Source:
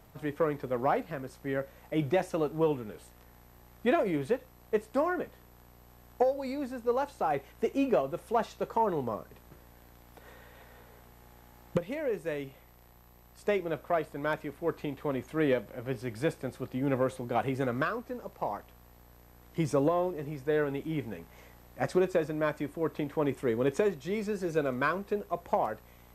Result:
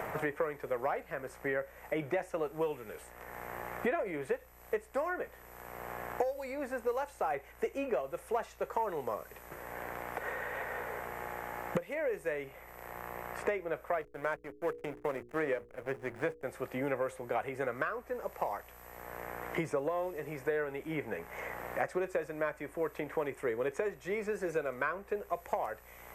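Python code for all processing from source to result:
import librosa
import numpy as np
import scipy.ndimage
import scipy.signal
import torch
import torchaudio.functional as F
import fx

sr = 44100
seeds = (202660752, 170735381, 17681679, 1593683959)

y = fx.chain(x, sr, fx.backlash(play_db=-36.5),
    fx.hum_notches(base_hz=60, count=8), at=(14.01, 16.43))
y = fx.graphic_eq_10(y, sr, hz=(125, 250, 500, 2000, 4000, 8000), db=(-7, -10, 3, 7, -10, 3))
y = fx.band_squash(y, sr, depth_pct=100)
y = y * librosa.db_to_amplitude(-4.5)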